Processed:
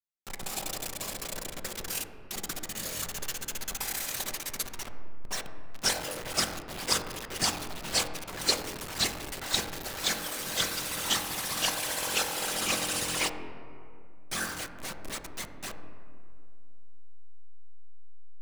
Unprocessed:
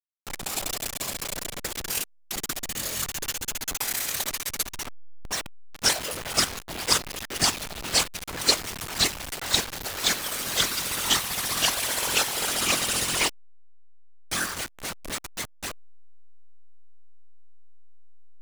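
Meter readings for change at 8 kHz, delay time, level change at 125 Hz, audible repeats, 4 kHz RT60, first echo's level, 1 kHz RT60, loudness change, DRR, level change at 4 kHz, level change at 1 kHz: -5.5 dB, no echo, -4.0 dB, no echo, 1.3 s, no echo, 2.2 s, -5.0 dB, 6.0 dB, -5.5 dB, -4.0 dB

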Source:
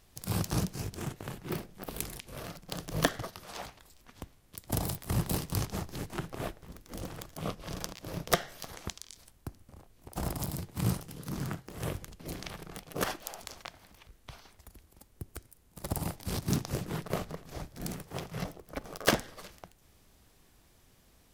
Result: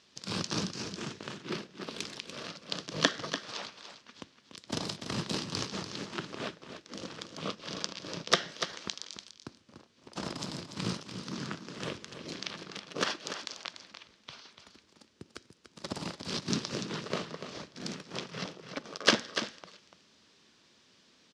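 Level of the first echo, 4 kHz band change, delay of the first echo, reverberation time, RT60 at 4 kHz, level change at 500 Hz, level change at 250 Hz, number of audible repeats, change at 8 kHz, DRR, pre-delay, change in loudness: -9.5 dB, +7.0 dB, 291 ms, no reverb, no reverb, -0.5 dB, -1.0 dB, 1, -0.5 dB, no reverb, no reverb, +0.5 dB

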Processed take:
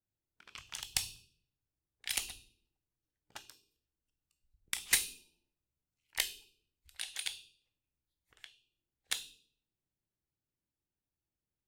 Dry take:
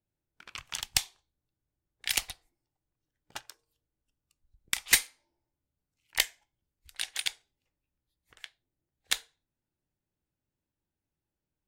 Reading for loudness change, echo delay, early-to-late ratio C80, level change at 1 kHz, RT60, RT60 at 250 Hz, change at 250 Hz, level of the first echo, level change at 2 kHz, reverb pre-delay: -6.5 dB, no echo, 14.0 dB, -7.5 dB, 0.70 s, 0.80 s, -6.5 dB, no echo, -7.5 dB, 14 ms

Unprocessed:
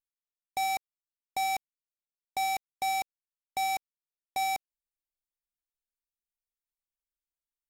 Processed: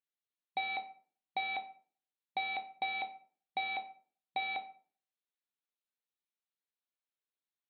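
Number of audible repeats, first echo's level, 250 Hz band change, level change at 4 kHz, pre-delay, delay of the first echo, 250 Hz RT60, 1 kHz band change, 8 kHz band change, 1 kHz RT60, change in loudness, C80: no echo, no echo, -2.5 dB, -3.5 dB, 14 ms, no echo, 0.55 s, -8.0 dB, under -40 dB, 0.45 s, -5.5 dB, 18.0 dB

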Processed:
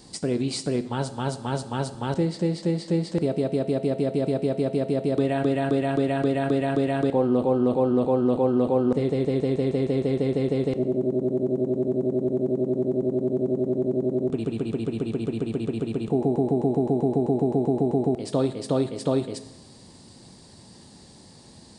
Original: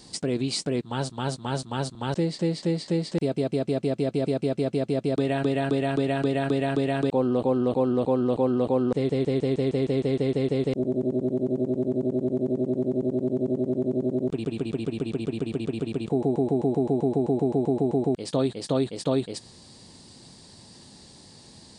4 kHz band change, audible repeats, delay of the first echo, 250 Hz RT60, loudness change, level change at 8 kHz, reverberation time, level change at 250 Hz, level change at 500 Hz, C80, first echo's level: -2.5 dB, no echo, no echo, 0.90 s, +1.5 dB, no reading, 0.90 s, +1.5 dB, +1.5 dB, 15.5 dB, no echo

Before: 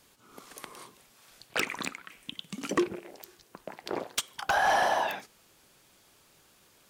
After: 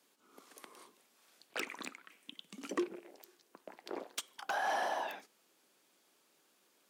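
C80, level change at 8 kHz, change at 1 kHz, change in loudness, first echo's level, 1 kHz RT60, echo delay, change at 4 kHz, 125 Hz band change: no reverb, -10.0 dB, -9.5 dB, -9.5 dB, no echo, no reverb, no echo, -10.0 dB, under -15 dB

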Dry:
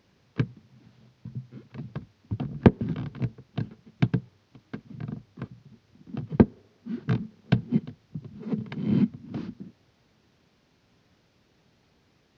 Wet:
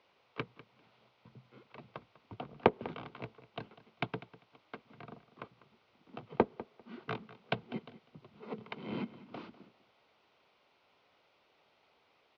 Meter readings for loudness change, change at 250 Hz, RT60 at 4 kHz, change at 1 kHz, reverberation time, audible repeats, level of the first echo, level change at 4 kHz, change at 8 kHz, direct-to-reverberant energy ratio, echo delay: -11.0 dB, -16.0 dB, no reverb, +1.0 dB, no reverb, 2, -17.0 dB, -2.0 dB, no reading, no reverb, 198 ms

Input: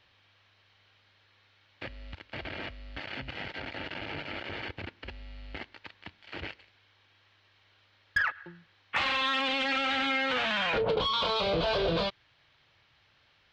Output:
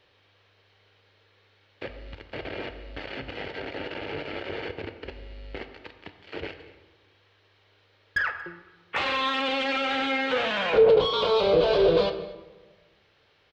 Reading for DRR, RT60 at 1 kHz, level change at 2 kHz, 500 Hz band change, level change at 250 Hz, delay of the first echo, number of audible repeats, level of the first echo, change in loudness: 8.0 dB, 1.2 s, +1.0 dB, +10.0 dB, +4.5 dB, 231 ms, 1, -22.5 dB, +4.5 dB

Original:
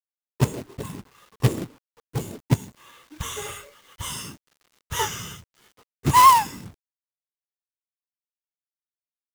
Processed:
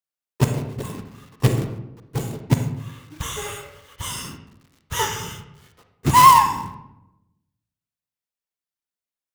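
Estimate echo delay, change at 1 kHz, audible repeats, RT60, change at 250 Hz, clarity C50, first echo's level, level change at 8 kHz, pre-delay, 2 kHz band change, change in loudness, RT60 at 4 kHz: no echo, +2.5 dB, no echo, 0.90 s, +3.5 dB, 7.5 dB, no echo, +2.0 dB, 37 ms, +3.0 dB, +2.0 dB, 0.55 s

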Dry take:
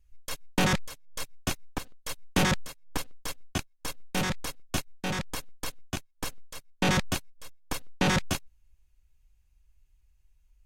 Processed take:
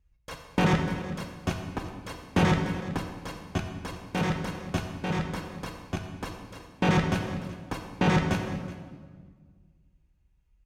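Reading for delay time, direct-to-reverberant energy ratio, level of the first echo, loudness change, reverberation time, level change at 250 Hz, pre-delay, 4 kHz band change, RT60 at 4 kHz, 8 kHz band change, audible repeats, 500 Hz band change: 373 ms, 3.0 dB, -17.0 dB, +2.0 dB, 1.6 s, +4.5 dB, 3 ms, -4.5 dB, 1.3 s, -9.5 dB, 1, +3.5 dB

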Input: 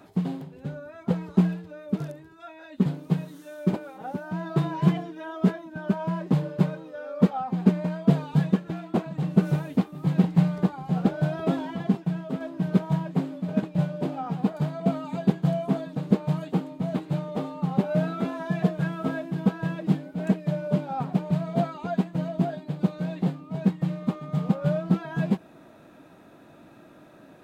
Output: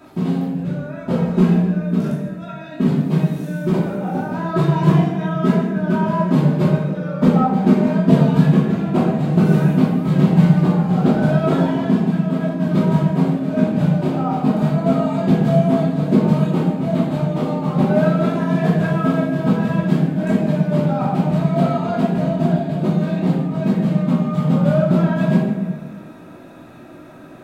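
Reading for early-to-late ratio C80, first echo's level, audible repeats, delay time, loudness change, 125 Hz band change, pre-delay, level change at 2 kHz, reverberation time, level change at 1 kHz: 4.0 dB, no echo, no echo, no echo, +9.5 dB, +9.5 dB, 3 ms, +9.5 dB, 1.3 s, +10.0 dB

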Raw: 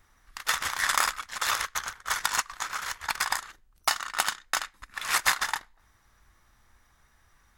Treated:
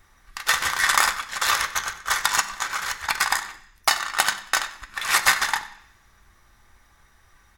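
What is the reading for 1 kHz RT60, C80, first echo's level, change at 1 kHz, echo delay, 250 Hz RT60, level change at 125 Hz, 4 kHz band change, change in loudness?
0.65 s, 15.0 dB, -18.5 dB, +5.5 dB, 94 ms, 0.90 s, +5.5 dB, +6.0 dB, +6.0 dB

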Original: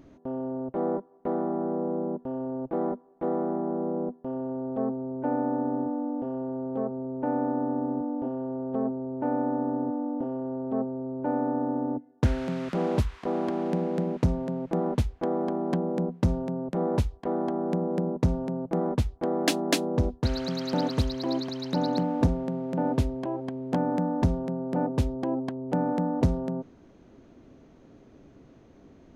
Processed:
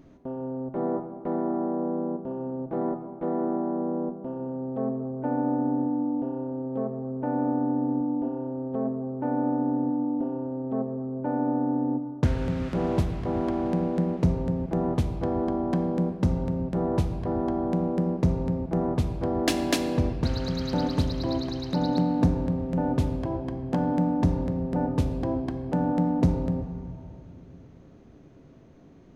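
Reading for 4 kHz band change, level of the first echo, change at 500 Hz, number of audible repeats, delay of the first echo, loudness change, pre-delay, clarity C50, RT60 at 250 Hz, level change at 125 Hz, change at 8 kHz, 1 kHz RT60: -1.0 dB, no echo, -0.5 dB, no echo, no echo, +1.5 dB, 5 ms, 8.0 dB, 2.5 s, +2.5 dB, -1.0 dB, 2.1 s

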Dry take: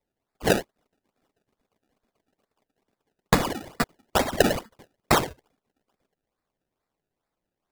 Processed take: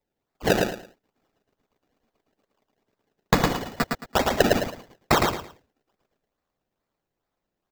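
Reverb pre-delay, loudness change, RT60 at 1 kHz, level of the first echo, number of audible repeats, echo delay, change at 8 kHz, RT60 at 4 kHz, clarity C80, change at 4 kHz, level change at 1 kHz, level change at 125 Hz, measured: no reverb, +1.0 dB, no reverb, -3.5 dB, 3, 110 ms, -1.0 dB, no reverb, no reverb, +1.5 dB, +1.5 dB, +1.5 dB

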